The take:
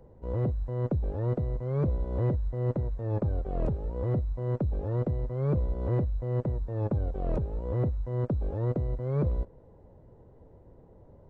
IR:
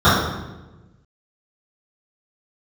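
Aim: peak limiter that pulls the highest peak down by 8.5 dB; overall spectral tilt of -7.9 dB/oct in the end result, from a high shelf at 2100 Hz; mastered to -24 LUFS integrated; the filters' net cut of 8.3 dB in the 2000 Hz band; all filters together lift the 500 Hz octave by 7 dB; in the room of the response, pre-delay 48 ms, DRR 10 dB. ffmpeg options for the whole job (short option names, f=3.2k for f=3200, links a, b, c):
-filter_complex "[0:a]equalizer=f=500:t=o:g=9,equalizer=f=2k:t=o:g=-7,highshelf=f=2.1k:g=-8.5,alimiter=limit=-21.5dB:level=0:latency=1,asplit=2[a][b];[1:a]atrim=start_sample=2205,adelay=48[c];[b][c]afir=irnorm=-1:irlink=0,volume=-38dB[d];[a][d]amix=inputs=2:normalize=0,volume=6dB"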